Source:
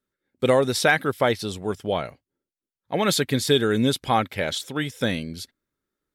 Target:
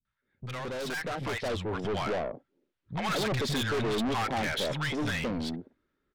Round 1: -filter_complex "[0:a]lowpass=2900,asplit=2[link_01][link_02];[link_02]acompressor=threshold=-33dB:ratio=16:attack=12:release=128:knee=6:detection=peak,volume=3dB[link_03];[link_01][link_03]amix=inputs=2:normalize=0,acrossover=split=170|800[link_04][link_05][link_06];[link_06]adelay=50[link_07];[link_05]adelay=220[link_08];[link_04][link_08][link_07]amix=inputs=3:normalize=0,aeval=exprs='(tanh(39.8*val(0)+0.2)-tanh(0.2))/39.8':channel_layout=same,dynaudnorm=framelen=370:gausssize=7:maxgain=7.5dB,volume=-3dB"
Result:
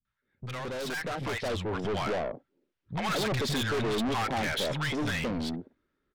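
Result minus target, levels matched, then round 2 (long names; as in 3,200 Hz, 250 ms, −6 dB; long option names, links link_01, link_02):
downward compressor: peak gain reduction −6 dB
-filter_complex "[0:a]lowpass=2900,asplit=2[link_01][link_02];[link_02]acompressor=threshold=-39.5dB:ratio=16:attack=12:release=128:knee=6:detection=peak,volume=3dB[link_03];[link_01][link_03]amix=inputs=2:normalize=0,acrossover=split=170|800[link_04][link_05][link_06];[link_06]adelay=50[link_07];[link_05]adelay=220[link_08];[link_04][link_08][link_07]amix=inputs=3:normalize=0,aeval=exprs='(tanh(39.8*val(0)+0.2)-tanh(0.2))/39.8':channel_layout=same,dynaudnorm=framelen=370:gausssize=7:maxgain=7.5dB,volume=-3dB"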